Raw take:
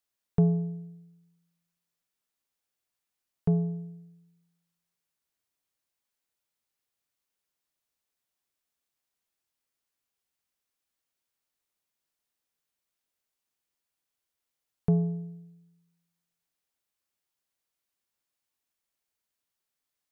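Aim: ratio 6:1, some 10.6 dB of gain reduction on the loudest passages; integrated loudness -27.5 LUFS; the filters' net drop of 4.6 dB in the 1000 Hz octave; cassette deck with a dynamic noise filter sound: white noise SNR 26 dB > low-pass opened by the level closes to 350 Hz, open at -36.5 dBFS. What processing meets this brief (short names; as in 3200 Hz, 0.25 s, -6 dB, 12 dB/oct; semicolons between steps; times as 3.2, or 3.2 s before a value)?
bell 1000 Hz -8.5 dB; compressor 6:1, threshold -30 dBFS; white noise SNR 26 dB; low-pass opened by the level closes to 350 Hz, open at -36.5 dBFS; gain +10.5 dB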